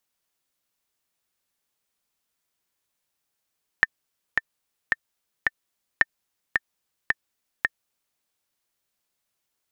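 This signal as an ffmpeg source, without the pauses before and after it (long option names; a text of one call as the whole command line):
ffmpeg -f lavfi -i "aevalsrc='pow(10,(-3-4*gte(mod(t,4*60/110),60/110))/20)*sin(2*PI*1800*mod(t,60/110))*exp(-6.91*mod(t,60/110)/0.03)':duration=4.36:sample_rate=44100" out.wav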